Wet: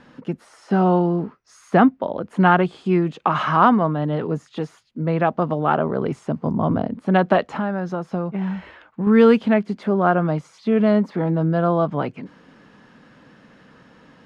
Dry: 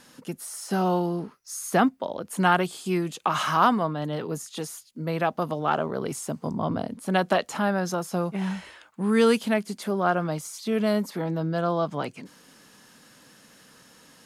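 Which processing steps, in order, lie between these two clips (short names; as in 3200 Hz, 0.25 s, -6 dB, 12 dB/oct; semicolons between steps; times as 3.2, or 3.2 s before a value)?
LPF 2300 Hz 12 dB/oct; low shelf 400 Hz +4.5 dB; 7.51–9.07 compressor 2:1, threshold -29 dBFS, peak gain reduction 7 dB; gain +4.5 dB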